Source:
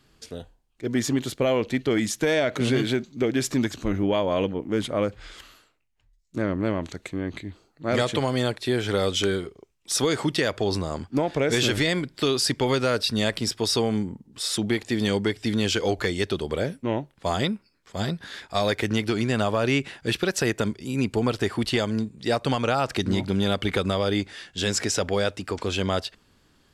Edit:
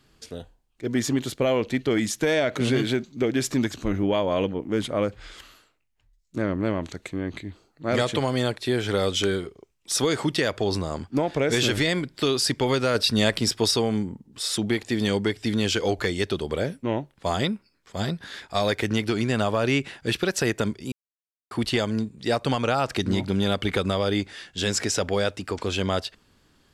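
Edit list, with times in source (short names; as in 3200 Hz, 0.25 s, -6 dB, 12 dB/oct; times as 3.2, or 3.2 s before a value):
12.95–13.71 gain +3 dB
20.92–21.51 mute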